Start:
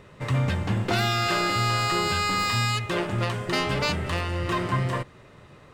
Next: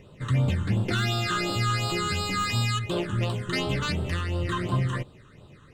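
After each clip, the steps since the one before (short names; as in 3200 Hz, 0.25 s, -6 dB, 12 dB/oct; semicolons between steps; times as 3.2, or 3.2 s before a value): phaser stages 8, 2.8 Hz, lowest notch 650–2000 Hz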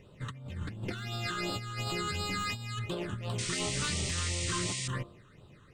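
de-hum 49.38 Hz, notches 27; negative-ratio compressor -28 dBFS, ratio -0.5; painted sound noise, 3.38–4.88, 1800–9300 Hz -30 dBFS; gain -7 dB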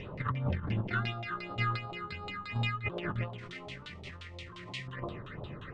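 negative-ratio compressor -41 dBFS, ratio -0.5; LFO low-pass saw down 5.7 Hz 650–3700 Hz; gain +5 dB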